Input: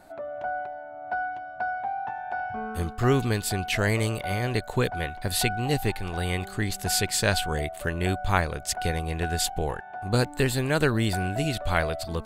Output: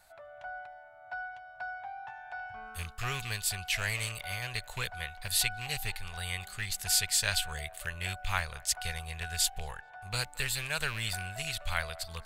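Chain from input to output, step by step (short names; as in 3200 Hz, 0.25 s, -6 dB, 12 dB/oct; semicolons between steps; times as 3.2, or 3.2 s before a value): rattling part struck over -27 dBFS, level -24 dBFS; passive tone stack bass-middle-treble 10-0-10; on a send: narrowing echo 0.217 s, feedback 72%, band-pass 800 Hz, level -21 dB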